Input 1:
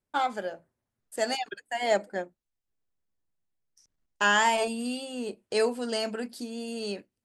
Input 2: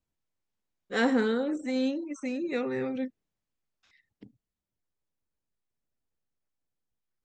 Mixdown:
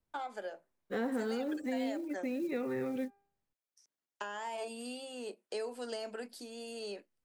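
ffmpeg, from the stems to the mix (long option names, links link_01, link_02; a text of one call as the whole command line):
ffmpeg -i stem1.wav -i stem2.wav -filter_complex "[0:a]highpass=360,acompressor=threshold=-27dB:ratio=6,volume=-5dB[link_01];[1:a]highshelf=frequency=3000:gain=-11.5,bandreject=frequency=399.6:width_type=h:width=4,bandreject=frequency=799.2:width_type=h:width=4,bandreject=frequency=1198.8:width_type=h:width=4,bandreject=frequency=1598.4:width_type=h:width=4,bandreject=frequency=1998:width_type=h:width=4,bandreject=frequency=2397.6:width_type=h:width=4,acrusher=bits=8:mode=log:mix=0:aa=0.000001,volume=1dB,asplit=3[link_02][link_03][link_04];[link_02]atrim=end=3.53,asetpts=PTS-STARTPTS,afade=type=out:start_time=3.526:duration=0.004:curve=hsin[link_05];[link_03]atrim=start=3.53:end=5.53,asetpts=PTS-STARTPTS,volume=0[link_06];[link_04]atrim=start=5.53,asetpts=PTS-STARTPTS,afade=type=in:duration=0.004:curve=hsin[link_07];[link_05][link_06][link_07]concat=n=3:v=0:a=1[link_08];[link_01][link_08]amix=inputs=2:normalize=0,acrossover=split=390|910[link_09][link_10][link_11];[link_09]acompressor=threshold=-38dB:ratio=4[link_12];[link_10]acompressor=threshold=-40dB:ratio=4[link_13];[link_11]acompressor=threshold=-46dB:ratio=4[link_14];[link_12][link_13][link_14]amix=inputs=3:normalize=0" out.wav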